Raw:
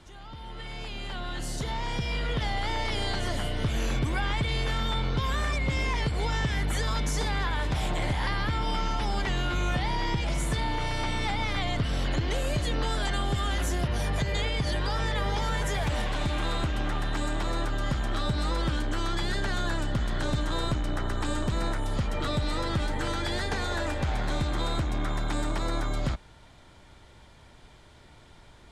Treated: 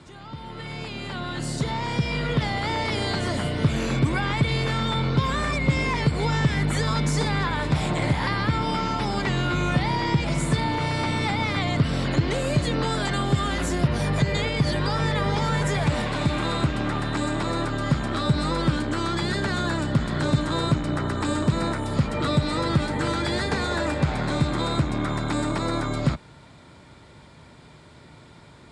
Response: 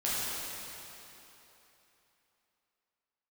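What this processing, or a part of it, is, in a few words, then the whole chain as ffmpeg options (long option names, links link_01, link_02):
car door speaker: -af "highpass=90,equalizer=frequency=150:width_type=q:width=4:gain=6,equalizer=frequency=250:width_type=q:width=4:gain=3,equalizer=frequency=760:width_type=q:width=4:gain=-4,equalizer=frequency=1700:width_type=q:width=4:gain=-3,equalizer=frequency=3100:width_type=q:width=4:gain=-6,equalizer=frequency=6100:width_type=q:width=4:gain=-7,lowpass=frequency=9300:width=0.5412,lowpass=frequency=9300:width=1.3066,volume=6.5dB"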